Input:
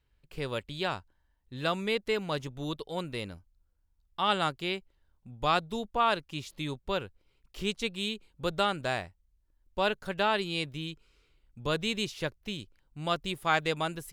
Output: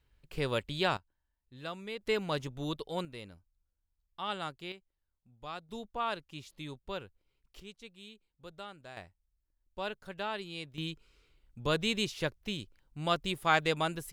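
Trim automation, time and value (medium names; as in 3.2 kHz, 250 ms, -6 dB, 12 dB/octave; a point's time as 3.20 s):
+2 dB
from 0.97 s -11 dB
from 2.01 s -1 dB
from 3.05 s -9.5 dB
from 4.72 s -16 dB
from 5.69 s -8 dB
from 7.60 s -18 dB
from 8.97 s -9.5 dB
from 10.78 s 0 dB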